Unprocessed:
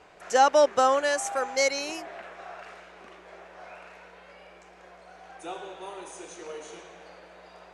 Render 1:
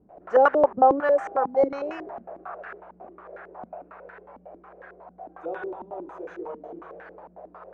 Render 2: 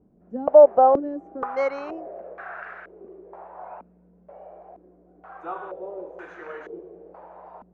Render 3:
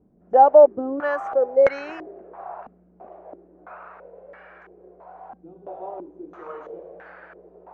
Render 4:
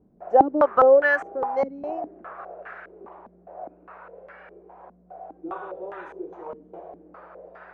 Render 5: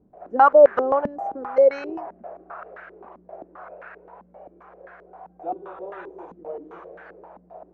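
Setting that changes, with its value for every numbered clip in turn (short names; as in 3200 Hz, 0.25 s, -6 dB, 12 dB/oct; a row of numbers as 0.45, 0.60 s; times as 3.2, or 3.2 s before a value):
stepped low-pass, rate: 11, 2.1, 3, 4.9, 7.6 Hz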